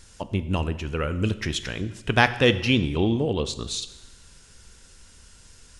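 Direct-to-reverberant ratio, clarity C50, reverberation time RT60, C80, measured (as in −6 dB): 11.5 dB, 14.0 dB, 1.1 s, 15.5 dB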